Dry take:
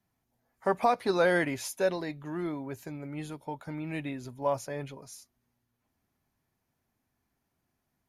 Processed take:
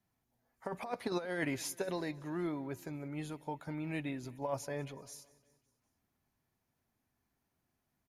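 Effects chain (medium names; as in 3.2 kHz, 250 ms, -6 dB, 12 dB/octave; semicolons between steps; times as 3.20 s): compressor with a negative ratio -28 dBFS, ratio -0.5; feedback delay 187 ms, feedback 56%, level -22 dB; trim -5.5 dB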